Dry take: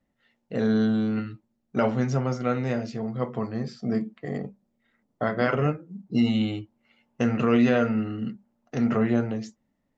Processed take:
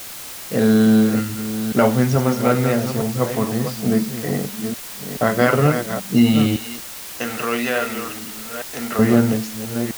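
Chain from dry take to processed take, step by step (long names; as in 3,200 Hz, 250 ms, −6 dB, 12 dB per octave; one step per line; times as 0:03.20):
delay that plays each chunk backwards 431 ms, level −8 dB
0:06.56–0:08.99: high-pass filter 1,200 Hz 6 dB per octave
background noise white −42 dBFS
level +8 dB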